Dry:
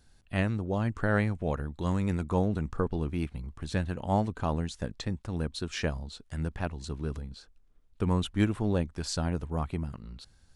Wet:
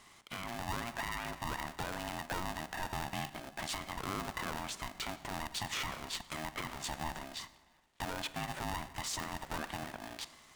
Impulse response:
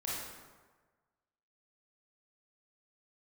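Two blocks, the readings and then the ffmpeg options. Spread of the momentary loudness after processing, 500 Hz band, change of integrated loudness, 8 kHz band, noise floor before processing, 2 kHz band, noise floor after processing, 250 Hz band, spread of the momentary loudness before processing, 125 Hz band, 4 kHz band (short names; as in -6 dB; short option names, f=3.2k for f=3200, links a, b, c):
5 LU, -12.0 dB, -8.0 dB, +2.5 dB, -61 dBFS, -1.5 dB, -62 dBFS, -14.5 dB, 10 LU, -16.0 dB, +1.5 dB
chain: -filter_complex "[0:a]acompressor=threshold=-36dB:ratio=12,highpass=360,equalizer=f=1.4k:t=q:w=4:g=5,equalizer=f=2.8k:t=q:w=4:g=4,equalizer=f=4.6k:t=q:w=4:g=-9,lowpass=f=9k:w=0.5412,lowpass=f=9k:w=1.3066,asplit=2[a][b];[1:a]atrim=start_sample=2205[c];[b][c]afir=irnorm=-1:irlink=0,volume=-16dB[d];[a][d]amix=inputs=2:normalize=0,alimiter=level_in=14dB:limit=-24dB:level=0:latency=1:release=10,volume=-14dB,aeval=exprs='val(0)*sgn(sin(2*PI*470*n/s))':c=same,volume=10dB"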